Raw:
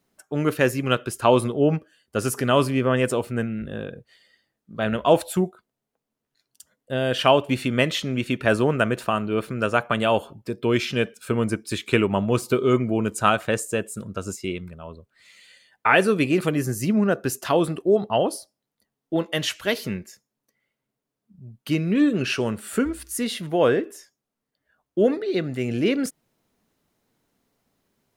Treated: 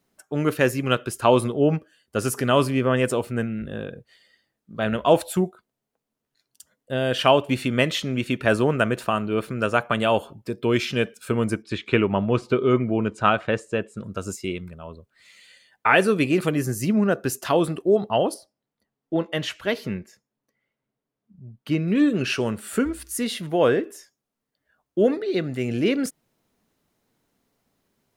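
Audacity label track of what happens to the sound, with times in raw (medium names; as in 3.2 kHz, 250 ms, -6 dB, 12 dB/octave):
11.620000	14.040000	low-pass 3.5 kHz
18.340000	21.880000	treble shelf 4.4 kHz -11.5 dB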